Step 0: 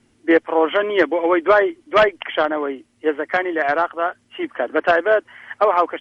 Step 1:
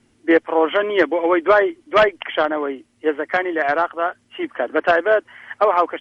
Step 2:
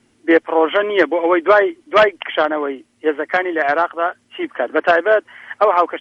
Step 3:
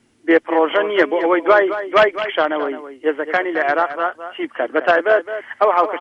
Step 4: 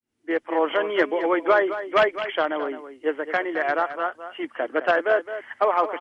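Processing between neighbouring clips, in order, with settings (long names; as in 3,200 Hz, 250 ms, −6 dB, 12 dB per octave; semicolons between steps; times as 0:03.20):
no processing that can be heard
low-shelf EQ 120 Hz −7.5 dB; level +2.5 dB
single-tap delay 214 ms −11.5 dB; level −1 dB
fade in at the beginning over 0.63 s; level −6 dB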